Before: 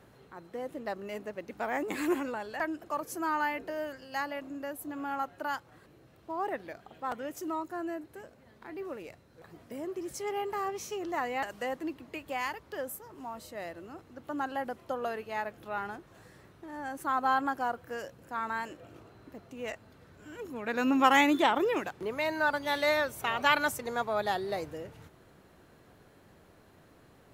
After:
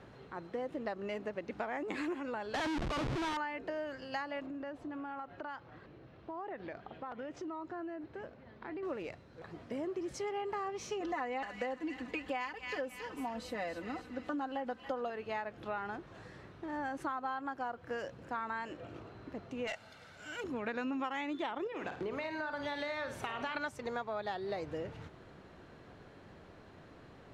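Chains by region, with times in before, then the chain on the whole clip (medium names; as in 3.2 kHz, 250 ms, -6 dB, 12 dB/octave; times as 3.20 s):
2.54–3.37 s: cabinet simulation 100–2400 Hz, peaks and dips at 140 Hz +9 dB, 280 Hz +4 dB, 920 Hz +3 dB, 2.3 kHz +10 dB + Schmitt trigger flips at -47.5 dBFS
4.46–8.83 s: distance through air 130 m + compression 10:1, threshold -42 dBFS
11.00–15.10 s: comb 4 ms, depth 81% + feedback echo behind a high-pass 279 ms, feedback 46%, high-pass 2.1 kHz, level -7 dB
19.67–20.44 s: tilt EQ +3.5 dB/octave + comb 1.4 ms, depth 45% + overload inside the chain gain 33.5 dB
21.67–23.55 s: compression 3:1, threshold -35 dBFS + flutter echo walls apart 8.9 m, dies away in 0.36 s
whole clip: compression 10:1, threshold -38 dBFS; low-pass 4.7 kHz 12 dB/octave; trim +3.5 dB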